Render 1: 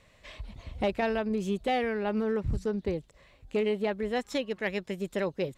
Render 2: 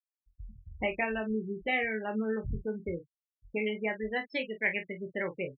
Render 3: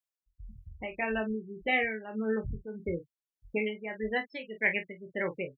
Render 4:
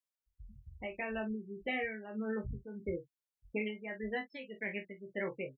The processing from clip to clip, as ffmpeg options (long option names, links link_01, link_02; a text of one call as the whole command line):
ffmpeg -i in.wav -filter_complex "[0:a]afftfilt=real='re*gte(hypot(re,im),0.0355)':imag='im*gte(hypot(re,im),0.0355)':win_size=1024:overlap=0.75,equalizer=frequency=2200:width_type=o:width=0.88:gain=14,asplit=2[link_01][link_02];[link_02]aecho=0:1:23|46:0.447|0.251[link_03];[link_01][link_03]amix=inputs=2:normalize=0,volume=-6dB" out.wav
ffmpeg -i in.wav -af "tremolo=f=1.7:d=0.7,volume=2.5dB" out.wav
ffmpeg -i in.wav -filter_complex "[0:a]asplit=2[link_01][link_02];[link_02]adelay=15,volume=-6.5dB[link_03];[link_01][link_03]amix=inputs=2:normalize=0,acrossover=split=450[link_04][link_05];[link_05]alimiter=limit=-23.5dB:level=0:latency=1:release=342[link_06];[link_04][link_06]amix=inputs=2:normalize=0,volume=-5dB" out.wav